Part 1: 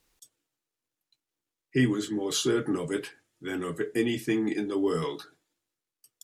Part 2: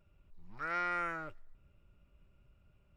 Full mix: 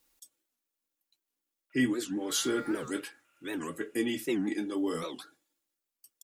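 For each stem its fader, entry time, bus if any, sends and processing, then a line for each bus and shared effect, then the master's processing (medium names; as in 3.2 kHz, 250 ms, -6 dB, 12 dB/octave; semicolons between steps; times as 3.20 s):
-4.0 dB, 0.00 s, no send, bass shelf 120 Hz -7.5 dB; comb 3.6 ms, depth 45%
-14.0 dB, 1.70 s, no send, high-pass 790 Hz; high-order bell 2.2 kHz +8.5 dB; overdrive pedal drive 27 dB, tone 1.8 kHz, clips at -27.5 dBFS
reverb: none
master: treble shelf 11 kHz +11.5 dB; warped record 78 rpm, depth 250 cents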